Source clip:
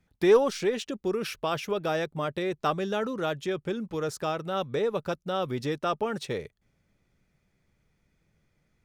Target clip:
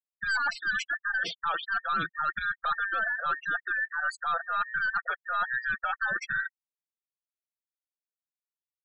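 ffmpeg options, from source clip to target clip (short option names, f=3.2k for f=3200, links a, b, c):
-af "afftfilt=real='real(if(between(b,1,1012),(2*floor((b-1)/92)+1)*92-b,b),0)':imag='imag(if(between(b,1,1012),(2*floor((b-1)/92)+1)*92-b,b),0)*if(between(b,1,1012),-1,1)':win_size=2048:overlap=0.75,equalizer=f=1.2k:w=4.6:g=14.5,bandreject=f=1.1k:w=5.6,aecho=1:1:5.8:0.62,bandreject=f=80.86:t=h:w=4,bandreject=f=161.72:t=h:w=4,bandreject=f=242.58:t=h:w=4,bandreject=f=323.44:t=h:w=4,bandreject=f=404.3:t=h:w=4,aeval=exprs='(tanh(7.94*val(0)+0.2)-tanh(0.2))/7.94':c=same,afftdn=nr=13:nf=-42,areverse,acompressor=threshold=-32dB:ratio=5,areverse,afftfilt=real='re*gte(hypot(re,im),0.0141)':imag='im*gte(hypot(re,im),0.0141)':win_size=1024:overlap=0.75,volume=4.5dB"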